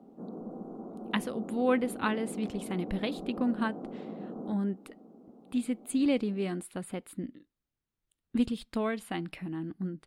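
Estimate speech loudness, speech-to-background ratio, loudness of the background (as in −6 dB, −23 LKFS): −33.0 LKFS, 9.0 dB, −42.0 LKFS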